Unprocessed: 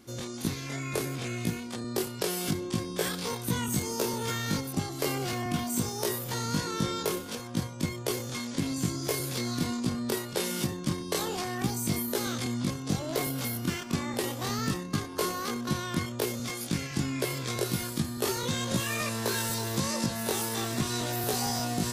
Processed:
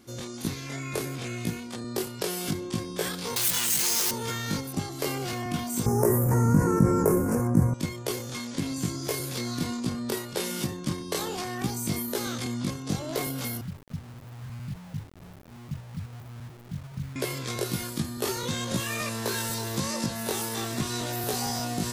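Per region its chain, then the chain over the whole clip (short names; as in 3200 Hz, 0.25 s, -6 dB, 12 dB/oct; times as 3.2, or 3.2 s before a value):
3.36–4.11 infinite clipping + tilt shelf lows -8.5 dB, about 1300 Hz + comb 5.8 ms, depth 56%
5.86–7.74 Butterworth band-stop 3600 Hz, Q 0.55 + low shelf 360 Hz +10.5 dB + fast leveller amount 50%
13.61–17.16 inverse Chebyshev band-stop 860–8300 Hz, stop band 80 dB + requantised 8-bit, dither none
whole clip: dry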